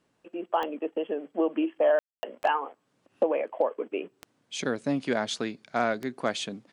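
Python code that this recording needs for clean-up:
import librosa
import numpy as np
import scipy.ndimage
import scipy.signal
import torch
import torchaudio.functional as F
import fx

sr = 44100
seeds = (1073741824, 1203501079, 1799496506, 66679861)

y = fx.fix_declip(x, sr, threshold_db=-13.5)
y = fx.fix_declick_ar(y, sr, threshold=10.0)
y = fx.fix_ambience(y, sr, seeds[0], print_start_s=2.73, print_end_s=3.23, start_s=1.99, end_s=2.23)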